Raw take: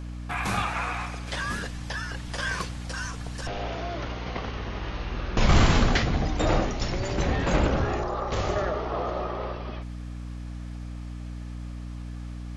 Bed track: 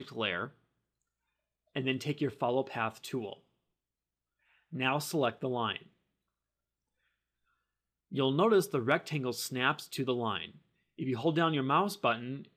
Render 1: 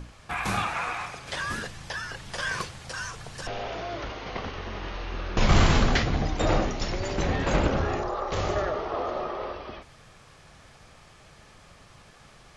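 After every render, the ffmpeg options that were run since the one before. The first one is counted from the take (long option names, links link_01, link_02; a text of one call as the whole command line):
ffmpeg -i in.wav -af "bandreject=frequency=60:width_type=h:width=6,bandreject=frequency=120:width_type=h:width=6,bandreject=frequency=180:width_type=h:width=6,bandreject=frequency=240:width_type=h:width=6,bandreject=frequency=300:width_type=h:width=6" out.wav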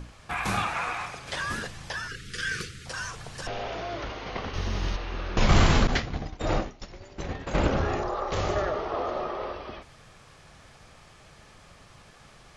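ffmpeg -i in.wav -filter_complex "[0:a]asettb=1/sr,asplit=3[link_01][link_02][link_03];[link_01]atrim=end=2.084[link_04];[link_02]atrim=start=2.08:end=2.86,asetpts=PTS-STARTPTS,afade=type=in:duration=0.004:curve=qsin,afade=type=out:start_time=0.776:duration=0.004:curve=qsin,asuperstop=centerf=780:order=12:qfactor=1[link_05];[link_03]atrim=start=2.856[link_06];[link_04][link_05]acrossfade=duration=0.004:curve1=hsin:curve2=qsin[link_07];[link_07][link_06]acrossfade=duration=0.004:curve1=qsin:curve2=hsin,asplit=3[link_08][link_09][link_10];[link_08]afade=type=out:start_time=4.53:duration=0.02[link_11];[link_09]bass=frequency=250:gain=9,treble=frequency=4000:gain=13,afade=type=in:start_time=4.53:duration=0.02,afade=type=out:start_time=4.95:duration=0.02[link_12];[link_10]afade=type=in:start_time=4.95:duration=0.02[link_13];[link_11][link_12][link_13]amix=inputs=3:normalize=0,asettb=1/sr,asplit=3[link_14][link_15][link_16];[link_14]atrim=end=5.874[link_17];[link_15]atrim=start=5.87:end=7.58,asetpts=PTS-STARTPTS,afade=type=in:duration=0.004:curve=qsin,afade=type=out:start_time=1.706:duration=0.004:curve=qsin,agate=range=-33dB:threshold=-19dB:ratio=3:release=100:detection=peak[link_18];[link_16]atrim=start=7.576[link_19];[link_17][link_18]acrossfade=duration=0.004:curve1=hsin:curve2=qsin[link_20];[link_20][link_19]acrossfade=duration=0.004:curve1=qsin:curve2=hsin" out.wav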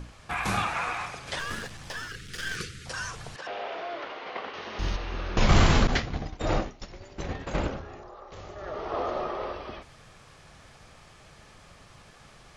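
ffmpeg -i in.wav -filter_complex "[0:a]asettb=1/sr,asplit=3[link_01][link_02][link_03];[link_01]atrim=end=1.394[link_04];[link_02]atrim=start=1.39:end=2.57,asetpts=PTS-STARTPTS,afade=type=in:duration=0.004:curve=qsin,afade=type=out:start_time=1.176:duration=0.004:curve=qsin,aeval=exprs='clip(val(0),-1,0.00944)':channel_layout=same[link_05];[link_03]atrim=start=2.566[link_06];[link_04][link_05]acrossfade=duration=0.004:curve1=hsin:curve2=qsin[link_07];[link_07][link_06]acrossfade=duration=0.004:curve1=qsin:curve2=hsin,asettb=1/sr,asplit=3[link_08][link_09][link_10];[link_08]atrim=end=3.364[link_11];[link_09]atrim=start=3.36:end=4.79,asetpts=PTS-STARTPTS,afade=type=in:duration=0.004:curve=qsin,afade=type=out:start_time=1.426:duration=0.004:curve=qsin,highpass=410,lowpass=3500[link_12];[link_10]atrim=start=4.786[link_13];[link_11][link_12]acrossfade=duration=0.004:curve1=hsin:curve2=qsin[link_14];[link_14][link_13]acrossfade=duration=0.004:curve1=qsin:curve2=hsin,asplit=3[link_15][link_16][link_17];[link_15]atrim=end=7.82,asetpts=PTS-STARTPTS,afade=type=out:start_time=7.42:duration=0.4:silence=0.16788[link_18];[link_16]atrim=start=7.82:end=8.58,asetpts=PTS-STARTPTS,volume=-15.5dB[link_19];[link_17]atrim=start=8.58,asetpts=PTS-STARTPTS,afade=type=in:duration=0.4:silence=0.16788[link_20];[link_18][link_19][link_20]concat=n=3:v=0:a=1" out.wav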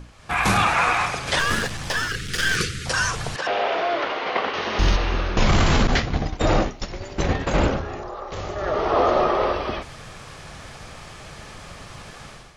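ffmpeg -i in.wav -af "dynaudnorm=framelen=130:gausssize=5:maxgain=12.5dB,alimiter=limit=-9.5dB:level=0:latency=1:release=11" out.wav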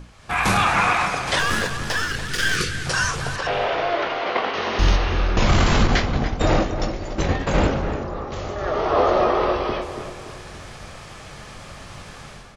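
ffmpeg -i in.wav -filter_complex "[0:a]asplit=2[link_01][link_02];[link_02]adelay=22,volume=-11dB[link_03];[link_01][link_03]amix=inputs=2:normalize=0,asplit=2[link_04][link_05];[link_05]adelay=286,lowpass=frequency=1600:poles=1,volume=-7.5dB,asplit=2[link_06][link_07];[link_07]adelay=286,lowpass=frequency=1600:poles=1,volume=0.46,asplit=2[link_08][link_09];[link_09]adelay=286,lowpass=frequency=1600:poles=1,volume=0.46,asplit=2[link_10][link_11];[link_11]adelay=286,lowpass=frequency=1600:poles=1,volume=0.46,asplit=2[link_12][link_13];[link_13]adelay=286,lowpass=frequency=1600:poles=1,volume=0.46[link_14];[link_04][link_06][link_08][link_10][link_12][link_14]amix=inputs=6:normalize=0" out.wav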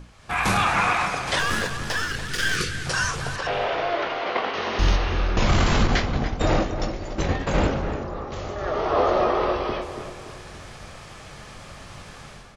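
ffmpeg -i in.wav -af "volume=-2.5dB" out.wav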